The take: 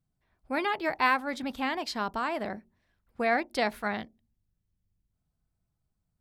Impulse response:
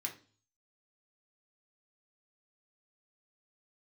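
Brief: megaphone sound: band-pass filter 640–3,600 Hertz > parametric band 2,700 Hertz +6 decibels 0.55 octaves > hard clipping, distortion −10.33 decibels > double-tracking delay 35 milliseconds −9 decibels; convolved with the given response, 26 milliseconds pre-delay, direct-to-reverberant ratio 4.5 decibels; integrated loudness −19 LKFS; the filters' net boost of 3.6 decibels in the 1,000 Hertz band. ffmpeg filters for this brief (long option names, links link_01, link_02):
-filter_complex "[0:a]equalizer=frequency=1000:width_type=o:gain=5.5,asplit=2[link_01][link_02];[1:a]atrim=start_sample=2205,adelay=26[link_03];[link_02][link_03]afir=irnorm=-1:irlink=0,volume=-4.5dB[link_04];[link_01][link_04]amix=inputs=2:normalize=0,highpass=640,lowpass=3600,equalizer=frequency=2700:width_type=o:width=0.55:gain=6,asoftclip=type=hard:threshold=-20dB,asplit=2[link_05][link_06];[link_06]adelay=35,volume=-9dB[link_07];[link_05][link_07]amix=inputs=2:normalize=0,volume=9.5dB"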